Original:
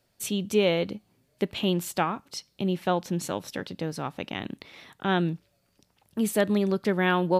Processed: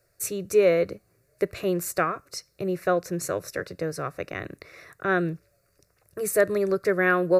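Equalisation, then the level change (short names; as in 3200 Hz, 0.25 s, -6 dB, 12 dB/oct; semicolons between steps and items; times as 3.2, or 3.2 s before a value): fixed phaser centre 870 Hz, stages 6; +5.5 dB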